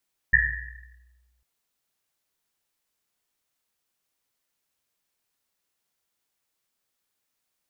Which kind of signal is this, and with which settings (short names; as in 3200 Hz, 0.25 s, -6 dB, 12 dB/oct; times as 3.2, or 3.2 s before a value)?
Risset drum, pitch 61 Hz, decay 1.56 s, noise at 1800 Hz, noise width 200 Hz, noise 70%